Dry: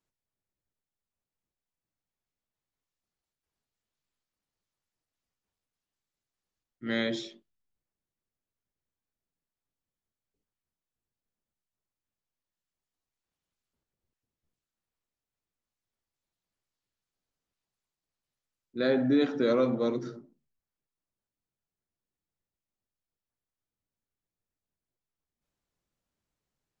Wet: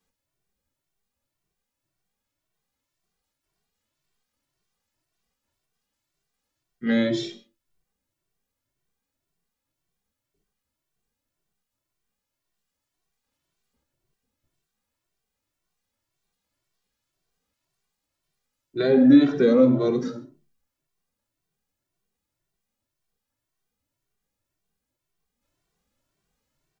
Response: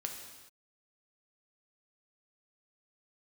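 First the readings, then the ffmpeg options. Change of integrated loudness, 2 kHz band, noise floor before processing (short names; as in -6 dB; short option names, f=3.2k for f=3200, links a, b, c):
+9.0 dB, +3.0 dB, under -85 dBFS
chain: -filter_complex "[0:a]acrossover=split=490[a][b];[b]acompressor=threshold=-38dB:ratio=4[c];[a][c]amix=inputs=2:normalize=0,asplit=2[d][e];[1:a]atrim=start_sample=2205,atrim=end_sample=6615[f];[e][f]afir=irnorm=-1:irlink=0,volume=-3dB[g];[d][g]amix=inputs=2:normalize=0,asplit=2[h][i];[i]adelay=2.1,afreqshift=1.9[j];[h][j]amix=inputs=2:normalize=1,volume=8dB"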